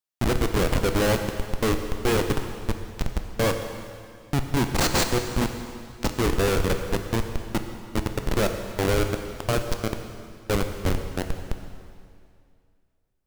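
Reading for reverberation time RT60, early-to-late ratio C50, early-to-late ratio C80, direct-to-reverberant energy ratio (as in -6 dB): 2.3 s, 7.0 dB, 8.0 dB, 5.5 dB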